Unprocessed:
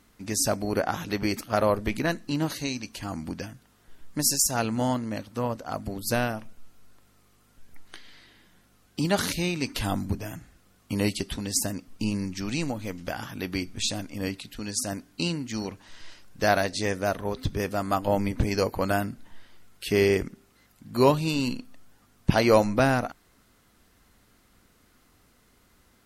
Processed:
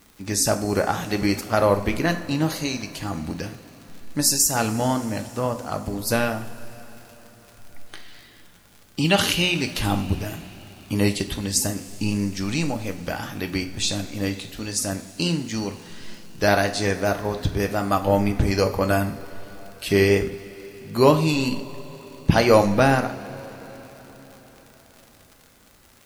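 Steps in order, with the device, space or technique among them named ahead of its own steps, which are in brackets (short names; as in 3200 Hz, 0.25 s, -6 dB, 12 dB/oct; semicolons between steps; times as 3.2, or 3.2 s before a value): vinyl LP (wow and flutter; crackle 78/s -39 dBFS; white noise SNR 38 dB); 9–9.55 bell 2900 Hz +14 dB 0.37 oct; two-slope reverb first 0.43 s, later 5 s, from -18 dB, DRR 6 dB; gain +3.5 dB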